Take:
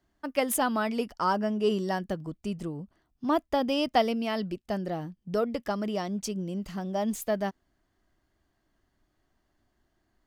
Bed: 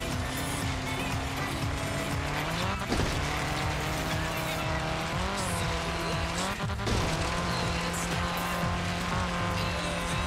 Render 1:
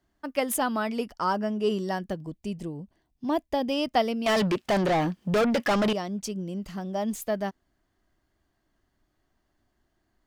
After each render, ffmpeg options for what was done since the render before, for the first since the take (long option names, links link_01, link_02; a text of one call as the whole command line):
ffmpeg -i in.wav -filter_complex "[0:a]asettb=1/sr,asplit=3[link_01][link_02][link_03];[link_01]atrim=end=2.134[link_04];[link_02]atrim=start=2.13:end=3.71,asetpts=PTS-STARTPTS,afade=type=in:duration=0.004:curve=qsin,afade=type=out:start_time=1.576:duration=0.004:curve=qsin,equalizer=frequency=1300:width=4.6:gain=-13[link_05];[link_03]atrim=start=3.706[link_06];[link_04][link_05]acrossfade=duration=0.004:curve1=hsin:curve2=qsin[link_07];[link_07][link_06]acrossfade=duration=0.004:curve1=qsin:curve2=hsin,asettb=1/sr,asplit=3[link_08][link_09][link_10];[link_08]atrim=end=4.264[link_11];[link_09]atrim=start=4.26:end=5.93,asetpts=PTS-STARTPTS,afade=type=in:duration=0.004:curve=qsin,afade=type=out:start_time=1.666:duration=0.004:curve=qsin,asplit=2[link_12][link_13];[link_13]highpass=frequency=720:poles=1,volume=31dB,asoftclip=type=tanh:threshold=-16dB[link_14];[link_12][link_14]amix=inputs=2:normalize=0,lowpass=frequency=3600:poles=1,volume=-6dB[link_15];[link_10]atrim=start=5.926[link_16];[link_11][link_15]acrossfade=duration=0.004:curve1=hsin:curve2=qsin[link_17];[link_17][link_16]acrossfade=duration=0.004:curve1=qsin:curve2=hsin" out.wav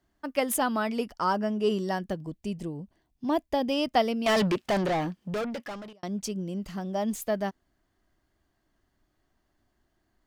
ffmpeg -i in.wav -filter_complex "[0:a]asplit=2[link_01][link_02];[link_01]atrim=end=6.03,asetpts=PTS-STARTPTS,afade=type=out:start_time=4.43:duration=1.6[link_03];[link_02]atrim=start=6.03,asetpts=PTS-STARTPTS,afade=type=in:duration=0.004:curve=hsin[link_04];[link_03][link_04]concat=n=2:v=0:a=1" out.wav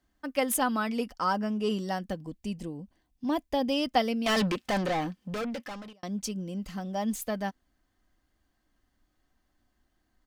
ffmpeg -i in.wav -af "equalizer=frequency=460:width=0.38:gain=-3,aecho=1:1:3.9:0.37" out.wav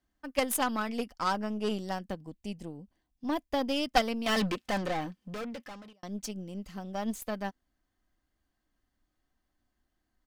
ffmpeg -i in.wav -af "aeval=exprs='0.251*(cos(1*acos(clip(val(0)/0.251,-1,1)))-cos(1*PI/2))+0.112*(cos(2*acos(clip(val(0)/0.251,-1,1)))-cos(2*PI/2))+0.0178*(cos(7*acos(clip(val(0)/0.251,-1,1)))-cos(7*PI/2))+0.0158*(cos(8*acos(clip(val(0)/0.251,-1,1)))-cos(8*PI/2))':channel_layout=same" out.wav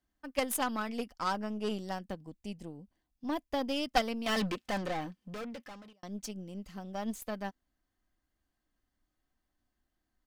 ffmpeg -i in.wav -af "volume=-3dB" out.wav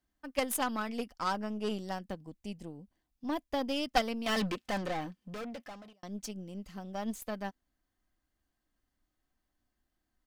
ffmpeg -i in.wav -filter_complex "[0:a]asettb=1/sr,asplit=3[link_01][link_02][link_03];[link_01]atrim=end=5.454[link_04];[link_02]atrim=start=5.45:end=5.95,asetpts=PTS-STARTPTS,afade=type=in:duration=0.004:curve=qsin,afade=type=out:start_time=0.496:duration=0.004:curve=qsin,equalizer=frequency=690:width_type=o:width=0.21:gain=11[link_05];[link_03]atrim=start=5.946[link_06];[link_04][link_05]acrossfade=duration=0.004:curve1=hsin:curve2=qsin[link_07];[link_07][link_06]acrossfade=duration=0.004:curve1=qsin:curve2=hsin" out.wav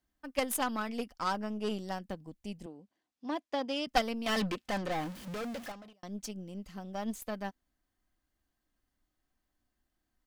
ffmpeg -i in.wav -filter_complex "[0:a]asettb=1/sr,asplit=3[link_01][link_02][link_03];[link_01]atrim=end=2.664[link_04];[link_02]atrim=start=2.66:end=3.87,asetpts=PTS-STARTPTS,afade=type=in:duration=0.004:curve=qsin,afade=type=out:start_time=1.206:duration=0.004:curve=qsin,highpass=260,lowpass=7100[link_05];[link_03]atrim=start=3.866[link_06];[link_04][link_05]acrossfade=duration=0.004:curve1=hsin:curve2=qsin[link_07];[link_07][link_06]acrossfade=duration=0.004:curve1=qsin:curve2=hsin,asettb=1/sr,asplit=3[link_08][link_09][link_10];[link_08]atrim=end=4.914[link_11];[link_09]atrim=start=4.91:end=5.72,asetpts=PTS-STARTPTS,afade=type=in:duration=0.004:curve=qsin,afade=type=out:start_time=0.806:duration=0.004:curve=qsin,aeval=exprs='val(0)+0.5*0.00841*sgn(val(0))':channel_layout=same[link_12];[link_10]atrim=start=5.716[link_13];[link_11][link_12]acrossfade=duration=0.004:curve1=hsin:curve2=qsin[link_14];[link_14][link_13]acrossfade=duration=0.004:curve1=qsin:curve2=hsin" out.wav